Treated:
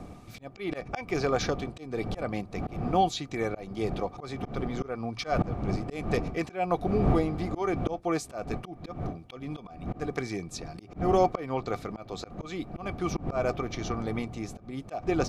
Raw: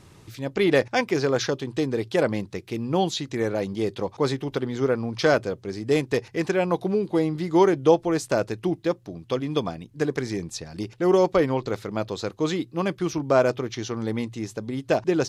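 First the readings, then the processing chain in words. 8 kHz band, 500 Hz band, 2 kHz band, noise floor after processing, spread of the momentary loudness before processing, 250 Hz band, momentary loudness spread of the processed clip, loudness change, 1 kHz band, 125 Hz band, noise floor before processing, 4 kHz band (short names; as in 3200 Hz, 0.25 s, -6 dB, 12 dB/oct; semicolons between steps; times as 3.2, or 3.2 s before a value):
-6.5 dB, -8.5 dB, -8.0 dB, -49 dBFS, 11 LU, -6.5 dB, 13 LU, -6.5 dB, -2.0 dB, -3.0 dB, -52 dBFS, -7.5 dB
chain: wind noise 230 Hz -28 dBFS; small resonant body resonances 730/1200/2300 Hz, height 14 dB, ringing for 50 ms; auto swell 0.221 s; gain -5.5 dB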